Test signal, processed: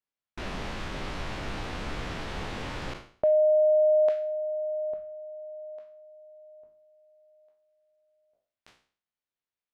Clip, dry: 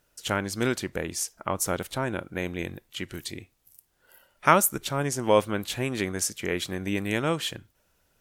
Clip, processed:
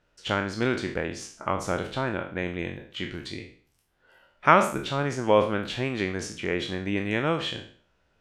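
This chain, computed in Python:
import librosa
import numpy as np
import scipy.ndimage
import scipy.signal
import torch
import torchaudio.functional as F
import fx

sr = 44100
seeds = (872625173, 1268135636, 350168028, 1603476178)

y = fx.spec_trails(x, sr, decay_s=0.47)
y = scipy.signal.sosfilt(scipy.signal.butter(2, 3500.0, 'lowpass', fs=sr, output='sos'), y)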